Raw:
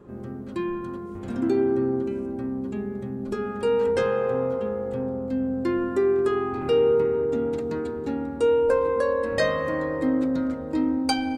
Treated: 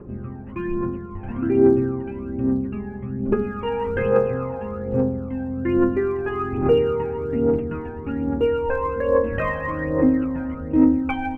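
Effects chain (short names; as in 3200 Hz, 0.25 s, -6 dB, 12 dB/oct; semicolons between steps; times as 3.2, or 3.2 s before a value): steep low-pass 2900 Hz 96 dB/oct; low shelf 62 Hz +8 dB; phaser 1.2 Hz, delay 1.3 ms, feedback 67%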